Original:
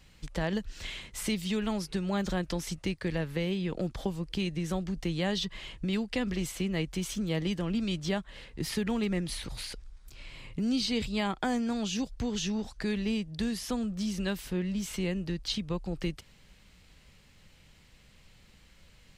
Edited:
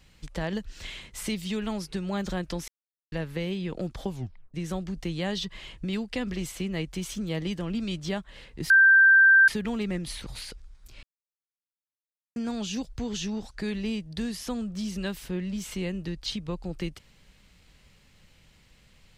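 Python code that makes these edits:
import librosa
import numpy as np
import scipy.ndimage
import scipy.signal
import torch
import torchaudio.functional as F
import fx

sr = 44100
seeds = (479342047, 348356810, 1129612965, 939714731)

y = fx.edit(x, sr, fx.silence(start_s=2.68, length_s=0.44),
    fx.tape_stop(start_s=4.11, length_s=0.43),
    fx.insert_tone(at_s=8.7, length_s=0.78, hz=1570.0, db=-13.0),
    fx.silence(start_s=10.25, length_s=1.33), tone=tone)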